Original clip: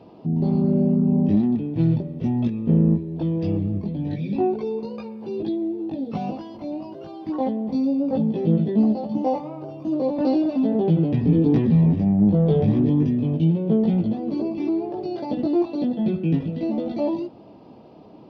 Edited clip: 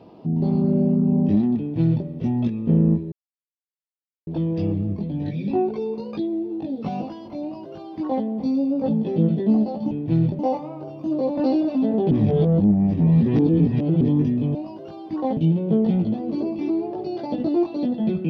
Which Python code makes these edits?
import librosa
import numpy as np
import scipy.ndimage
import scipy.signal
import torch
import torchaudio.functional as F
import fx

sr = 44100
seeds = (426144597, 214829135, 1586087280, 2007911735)

y = fx.edit(x, sr, fx.duplicate(start_s=1.59, length_s=0.48, to_s=9.2),
    fx.insert_silence(at_s=3.12, length_s=1.15),
    fx.cut(start_s=5.02, length_s=0.44),
    fx.duplicate(start_s=6.71, length_s=0.82, to_s=13.36),
    fx.reverse_span(start_s=10.92, length_s=1.9), tone=tone)